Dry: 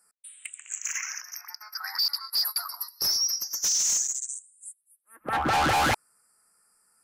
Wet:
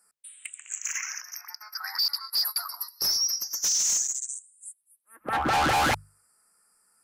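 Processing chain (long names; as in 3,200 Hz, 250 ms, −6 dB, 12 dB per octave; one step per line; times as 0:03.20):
mains-hum notches 50/100/150 Hz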